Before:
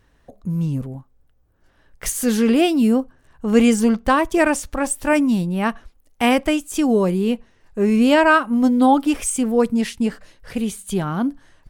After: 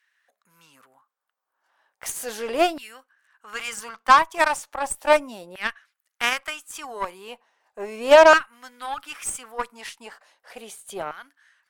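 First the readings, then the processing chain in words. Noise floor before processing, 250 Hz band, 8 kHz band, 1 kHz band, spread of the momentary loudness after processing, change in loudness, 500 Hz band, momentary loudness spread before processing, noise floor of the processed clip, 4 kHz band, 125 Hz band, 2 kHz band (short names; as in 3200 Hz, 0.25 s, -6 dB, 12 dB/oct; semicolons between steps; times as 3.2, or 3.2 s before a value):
-59 dBFS, -20.5 dB, -5.5 dB, 0.0 dB, 22 LU, -3.0 dB, -1.5 dB, 12 LU, -83 dBFS, -1.0 dB, under -25 dB, -0.5 dB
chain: LFO high-pass saw down 0.36 Hz 560–1900 Hz; added harmonics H 7 -23 dB, 8 -27 dB, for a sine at 0.5 dBFS; gain -1.5 dB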